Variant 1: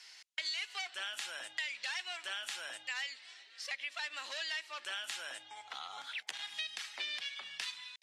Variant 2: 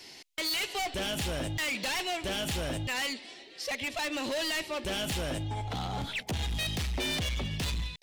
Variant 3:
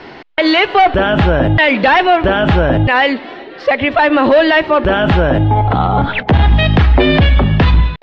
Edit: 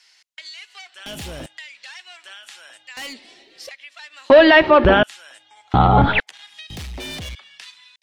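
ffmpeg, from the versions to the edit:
-filter_complex "[1:a]asplit=3[a][b][c];[2:a]asplit=2[d][e];[0:a]asplit=6[f][g][h][i][j][k];[f]atrim=end=1.062[l];[a]atrim=start=1.058:end=1.462[m];[g]atrim=start=1.458:end=2.972[n];[b]atrim=start=2.968:end=3.692[o];[h]atrim=start=3.688:end=4.302[p];[d]atrim=start=4.298:end=5.032[q];[i]atrim=start=5.028:end=5.742[r];[e]atrim=start=5.738:end=6.202[s];[j]atrim=start=6.198:end=6.702[t];[c]atrim=start=6.698:end=7.352[u];[k]atrim=start=7.348[v];[l][m]acrossfade=d=0.004:c1=hsin:c2=hsin[w];[w][n]acrossfade=d=0.004:c1=hsin:c2=hsin[x];[x][o]acrossfade=d=0.004:c1=hsin:c2=hsin[y];[y][p]acrossfade=d=0.004:c1=hsin:c2=hsin[z];[z][q]acrossfade=d=0.004:c1=hsin:c2=hsin[aa];[aa][r]acrossfade=d=0.004:c1=hsin:c2=hsin[ab];[ab][s]acrossfade=d=0.004:c1=hsin:c2=hsin[ac];[ac][t]acrossfade=d=0.004:c1=hsin:c2=hsin[ad];[ad][u]acrossfade=d=0.004:c1=hsin:c2=hsin[ae];[ae][v]acrossfade=d=0.004:c1=hsin:c2=hsin"

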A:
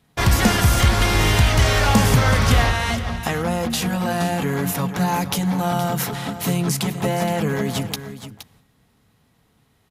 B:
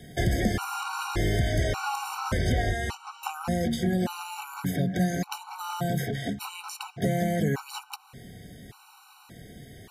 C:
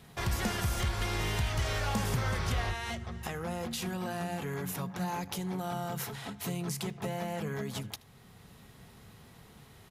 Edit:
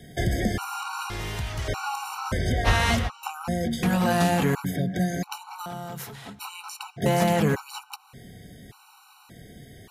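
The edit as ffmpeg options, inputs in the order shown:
-filter_complex "[2:a]asplit=2[a][b];[0:a]asplit=3[c][d][e];[1:a]asplit=6[f][g][h][i][j][k];[f]atrim=end=1.102[l];[a]atrim=start=1.098:end=1.682[m];[g]atrim=start=1.678:end=2.68[n];[c]atrim=start=2.64:end=3.1[o];[h]atrim=start=3.06:end=3.832[p];[d]atrim=start=3.828:end=4.552[q];[i]atrim=start=4.548:end=5.662[r];[b]atrim=start=5.658:end=6.392[s];[j]atrim=start=6.388:end=7.062[t];[e]atrim=start=7.058:end=7.552[u];[k]atrim=start=7.548[v];[l][m]acrossfade=d=0.004:c1=hsin:c2=hsin[w];[w][n]acrossfade=d=0.004:c1=hsin:c2=hsin[x];[x][o]acrossfade=d=0.04:c1=tri:c2=tri[y];[y][p]acrossfade=d=0.04:c1=tri:c2=tri[z];[z][q]acrossfade=d=0.004:c1=hsin:c2=hsin[aa];[aa][r]acrossfade=d=0.004:c1=hsin:c2=hsin[ab];[ab][s]acrossfade=d=0.004:c1=hsin:c2=hsin[ac];[ac][t]acrossfade=d=0.004:c1=hsin:c2=hsin[ad];[ad][u]acrossfade=d=0.004:c1=hsin:c2=hsin[ae];[ae][v]acrossfade=d=0.004:c1=hsin:c2=hsin"

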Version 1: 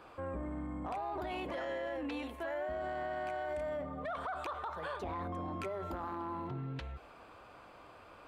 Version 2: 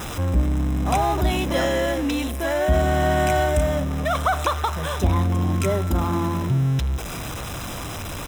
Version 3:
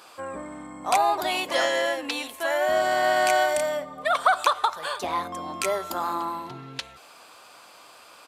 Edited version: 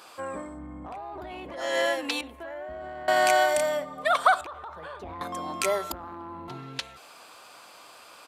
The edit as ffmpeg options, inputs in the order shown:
-filter_complex "[0:a]asplit=4[a][b][c][d];[2:a]asplit=5[e][f][g][h][i];[e]atrim=end=0.62[j];[a]atrim=start=0.38:end=1.8[k];[f]atrim=start=1.56:end=2.212[l];[b]atrim=start=2.208:end=3.082[m];[g]atrim=start=3.078:end=4.412[n];[c]atrim=start=4.408:end=5.212[o];[h]atrim=start=5.208:end=5.922[p];[d]atrim=start=5.918:end=6.482[q];[i]atrim=start=6.478[r];[j][k]acrossfade=d=0.24:c1=tri:c2=tri[s];[s][l]acrossfade=d=0.24:c1=tri:c2=tri[t];[t][m]acrossfade=d=0.004:c1=hsin:c2=hsin[u];[u][n]acrossfade=d=0.004:c1=hsin:c2=hsin[v];[v][o]acrossfade=d=0.004:c1=hsin:c2=hsin[w];[w][p]acrossfade=d=0.004:c1=hsin:c2=hsin[x];[x][q]acrossfade=d=0.004:c1=hsin:c2=hsin[y];[y][r]acrossfade=d=0.004:c1=hsin:c2=hsin"

